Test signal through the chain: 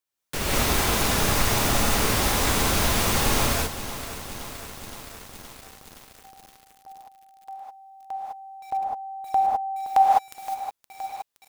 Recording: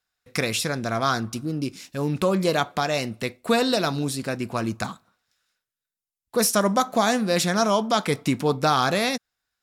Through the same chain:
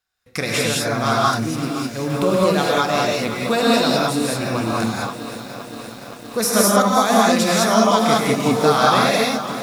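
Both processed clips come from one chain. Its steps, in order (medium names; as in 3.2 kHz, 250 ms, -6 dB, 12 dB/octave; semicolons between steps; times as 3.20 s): gated-style reverb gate 230 ms rising, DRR -4.5 dB; bit-crushed delay 519 ms, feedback 80%, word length 6-bit, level -13 dB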